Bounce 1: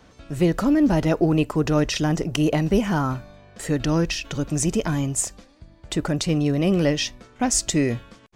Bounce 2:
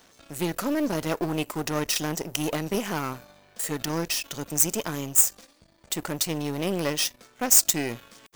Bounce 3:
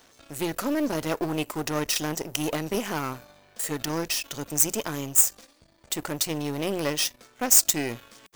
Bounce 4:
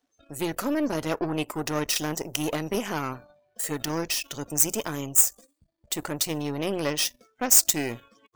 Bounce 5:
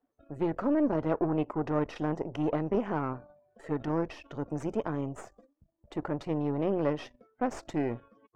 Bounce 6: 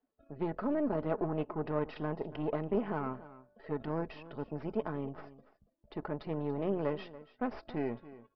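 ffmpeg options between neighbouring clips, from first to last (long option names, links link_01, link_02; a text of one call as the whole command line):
ffmpeg -i in.wav -af "aeval=exprs='if(lt(val(0),0),0.251*val(0),val(0))':channel_layout=same,aemphasis=mode=production:type=bsi,areverse,acompressor=mode=upward:threshold=-43dB:ratio=2.5,areverse,volume=-1.5dB" out.wav
ffmpeg -i in.wav -af "equalizer=frequency=180:width=7.7:gain=-8.5" out.wav
ffmpeg -i in.wav -af "afftdn=noise_reduction=24:noise_floor=-47" out.wav
ffmpeg -i in.wav -af "lowpass=1100" out.wav
ffmpeg -i in.wav -af "aecho=1:1:4.7:0.34,aecho=1:1:284:0.141,aresample=11025,aresample=44100,volume=-4.5dB" out.wav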